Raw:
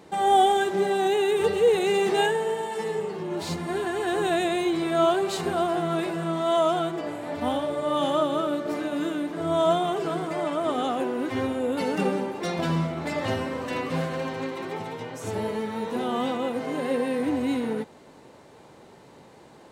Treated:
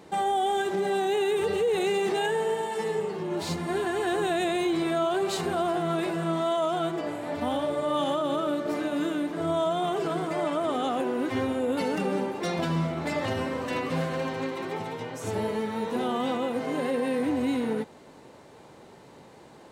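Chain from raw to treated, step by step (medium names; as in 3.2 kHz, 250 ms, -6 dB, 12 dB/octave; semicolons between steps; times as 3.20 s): peak limiter -19 dBFS, peak gain reduction 9 dB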